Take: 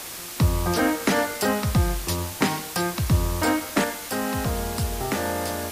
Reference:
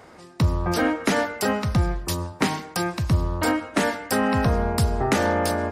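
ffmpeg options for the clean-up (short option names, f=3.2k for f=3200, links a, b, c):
-af "afwtdn=0.018,asetnsamples=n=441:p=0,asendcmd='3.84 volume volume 5.5dB',volume=0dB"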